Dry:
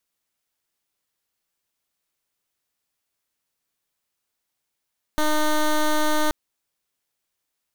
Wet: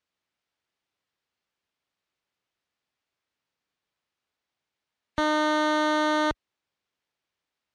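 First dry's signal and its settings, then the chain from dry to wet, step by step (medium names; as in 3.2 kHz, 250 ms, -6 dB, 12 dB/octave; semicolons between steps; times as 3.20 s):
pulse 305 Hz, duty 12% -19.5 dBFS 1.13 s
high-pass 45 Hz; spectral gate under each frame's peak -30 dB strong; low-pass 4 kHz 12 dB/octave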